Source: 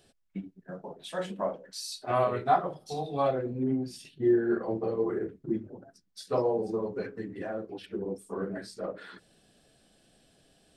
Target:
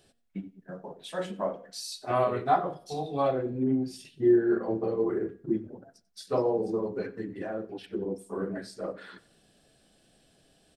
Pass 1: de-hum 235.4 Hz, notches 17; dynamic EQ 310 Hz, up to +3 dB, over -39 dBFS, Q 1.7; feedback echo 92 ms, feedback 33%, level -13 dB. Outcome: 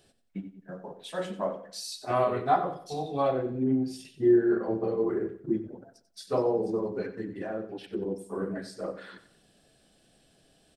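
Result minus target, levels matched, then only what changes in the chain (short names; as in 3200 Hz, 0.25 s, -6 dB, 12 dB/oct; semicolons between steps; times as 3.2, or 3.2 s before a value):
echo-to-direct +8 dB
change: feedback echo 92 ms, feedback 33%, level -21 dB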